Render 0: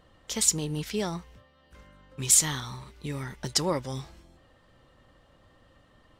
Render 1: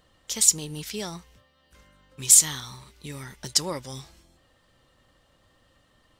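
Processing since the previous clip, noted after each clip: high shelf 3100 Hz +11 dB; gain -4.5 dB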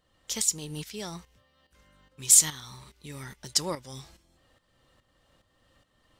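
tremolo saw up 2.4 Hz, depth 70%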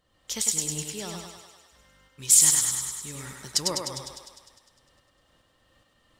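thinning echo 0.101 s, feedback 66%, high-pass 290 Hz, level -3 dB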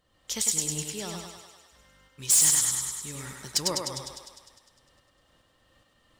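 hard clip -16 dBFS, distortion -10 dB

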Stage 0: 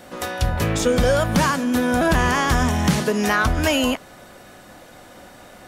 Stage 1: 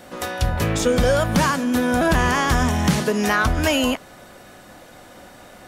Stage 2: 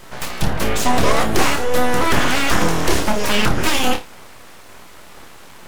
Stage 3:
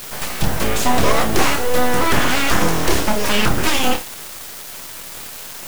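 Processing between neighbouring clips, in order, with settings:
nothing audible
flutter echo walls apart 4.8 m, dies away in 0.25 s; full-wave rectifier; gain +4 dB
added noise white -35 dBFS; bit-crush 5-bit

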